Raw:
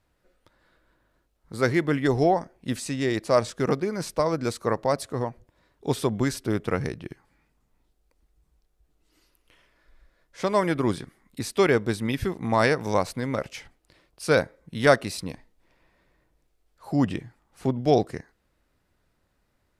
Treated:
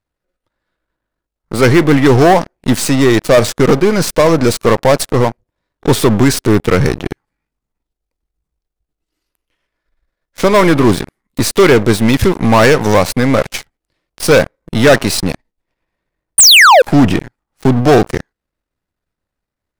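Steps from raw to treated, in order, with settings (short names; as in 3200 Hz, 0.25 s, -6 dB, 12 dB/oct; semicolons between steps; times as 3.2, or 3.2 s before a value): half-wave gain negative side -7 dB; painted sound fall, 16.38–16.82, 460–9600 Hz -18 dBFS; sample leveller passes 5; gain +3 dB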